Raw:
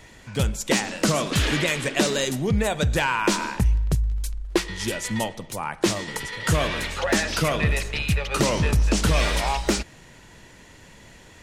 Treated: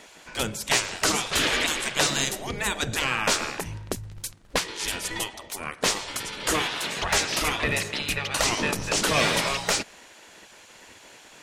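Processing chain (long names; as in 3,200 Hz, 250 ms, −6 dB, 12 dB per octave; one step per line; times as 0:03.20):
gate on every frequency bin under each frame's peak −10 dB weak
level +3 dB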